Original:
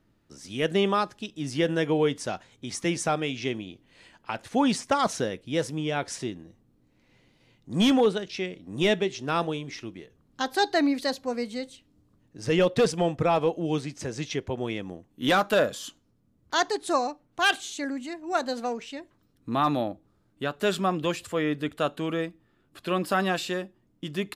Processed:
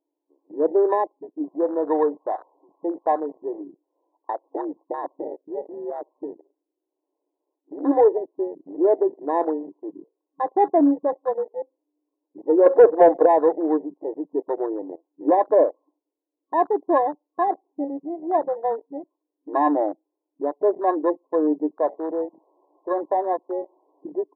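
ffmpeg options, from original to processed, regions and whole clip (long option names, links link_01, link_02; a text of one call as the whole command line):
ffmpeg -i in.wav -filter_complex "[0:a]asettb=1/sr,asplit=3[link_01][link_02][link_03];[link_01]atrim=end=1.444[link_04];[link_02]atrim=start=1.44:end=3.61,asetpts=PTS-STARTPTS,afade=type=in:duration=0.004:curve=qsin,afade=type=out:start_time=2.166:duration=0.004:curve=qsin,aeval=exprs='val(0)+0.5*0.0119*sgn(val(0))':channel_layout=same,tiltshelf=frequency=760:gain=-9.5[link_05];[link_03]atrim=start=3.606[link_06];[link_04][link_05]acrossfade=duration=0.004:curve1=hsin:curve2=qsin[link_07];[link_07][link_06]acrossfade=duration=0.004:curve1=qsin:curve2=hsin,asettb=1/sr,asplit=3[link_08][link_09][link_10];[link_08]atrim=end=4.554[link_11];[link_09]atrim=start=4.55:end=7.85,asetpts=PTS-STARTPTS,afade=type=in:duration=0.004:curve=qsin,afade=type=out:start_time=3.296:duration=0.004:curve=qsin,acompressor=threshold=-27dB:ratio=5:attack=3.2:release=140:knee=1:detection=peak,aeval=exprs='val(0)*sin(2*PI*73*n/s)':channel_layout=same[link_12];[link_10]atrim=start=7.846[link_13];[link_11][link_12]acrossfade=duration=0.004:curve1=hsin:curve2=qsin[link_14];[link_14][link_13]acrossfade=duration=0.004:curve1=qsin:curve2=hsin,asettb=1/sr,asplit=3[link_15][link_16][link_17];[link_15]atrim=end=12.664[link_18];[link_16]atrim=start=12.66:end=13.26,asetpts=PTS-STARTPTS,afade=type=in:duration=0.004:curve=qsin,afade=type=out:start_time=0.596:duration=0.004:curve=qsin,aecho=1:1:1.6:0.41,atrim=end_sample=26460,aeval=exprs='0.299*sin(PI/2*1.58*val(0)/0.299)':channel_layout=same[link_19];[link_17]atrim=start=13.256[link_20];[link_18][link_19]acrossfade=duration=0.004:curve1=hsin:curve2=qsin[link_21];[link_21][link_20]acrossfade=duration=0.004:curve1=qsin:curve2=hsin,asettb=1/sr,asplit=3[link_22][link_23][link_24];[link_22]atrim=end=21.774[link_25];[link_23]atrim=start=21.77:end=24.04,asetpts=PTS-STARTPTS,afade=type=in:duration=0.004:curve=qsin,afade=type=out:start_time=2.266:duration=0.004:curve=qsin,aeval=exprs='val(0)+0.5*0.0106*sgn(val(0))':channel_layout=same,highpass=460,lowpass=5100[link_26];[link_24]atrim=start=24.036[link_27];[link_25][link_26]acrossfade=duration=0.004:curve1=hsin:curve2=qsin[link_28];[link_28][link_27]acrossfade=duration=0.004:curve1=qsin:curve2=hsin,afftfilt=real='re*between(b*sr/4096,270,1100)':imag='im*between(b*sr/4096,270,1100)':win_size=4096:overlap=0.75,afwtdn=0.0178,acontrast=83" out.wav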